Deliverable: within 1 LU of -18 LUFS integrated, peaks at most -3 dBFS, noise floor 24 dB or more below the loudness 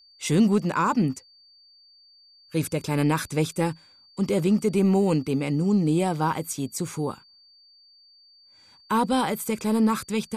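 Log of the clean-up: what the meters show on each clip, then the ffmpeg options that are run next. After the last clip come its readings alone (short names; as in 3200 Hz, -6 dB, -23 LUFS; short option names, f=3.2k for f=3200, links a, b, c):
steady tone 4600 Hz; tone level -53 dBFS; loudness -24.5 LUFS; peak -11.0 dBFS; loudness target -18.0 LUFS
-> -af "bandreject=f=4.6k:w=30"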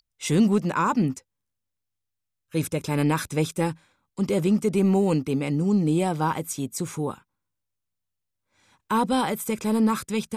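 steady tone none; loudness -24.5 LUFS; peak -11.0 dBFS; loudness target -18.0 LUFS
-> -af "volume=6.5dB"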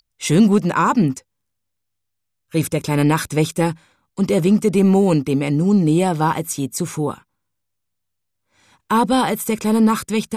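loudness -18.0 LUFS; peak -4.5 dBFS; noise floor -75 dBFS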